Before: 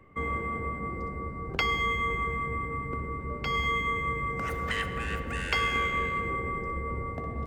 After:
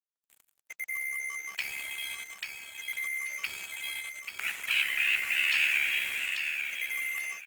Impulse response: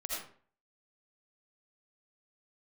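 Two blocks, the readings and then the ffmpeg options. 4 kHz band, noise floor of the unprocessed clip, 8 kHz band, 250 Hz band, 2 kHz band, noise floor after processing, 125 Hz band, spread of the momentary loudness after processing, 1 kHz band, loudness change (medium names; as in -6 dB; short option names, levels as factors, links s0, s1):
+4.0 dB, -38 dBFS, +10.5 dB, under -25 dB, +2.5 dB, -85 dBFS, under -30 dB, 13 LU, -20.0 dB, +0.5 dB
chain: -filter_complex "[0:a]afftfilt=real='re*lt(hypot(re,im),0.0631)':imag='im*lt(hypot(re,im),0.0631)':win_size=1024:overlap=0.75,highpass=f=2400:t=q:w=5.5,highshelf=f=3200:g=-5,dynaudnorm=f=210:g=3:m=5.31,acrusher=bits=4:mix=0:aa=0.5,acrossover=split=6000[s0][s1];[s1]acompressor=threshold=0.00316:ratio=4:attack=1:release=60[s2];[s0][s2]amix=inputs=2:normalize=0,aexciter=amount=4.2:drive=5.7:freq=7600,tremolo=f=69:d=0.621,aecho=1:1:838|1676|2514:0.501|0.105|0.0221,volume=0.531" -ar 48000 -c:a libopus -b:a 24k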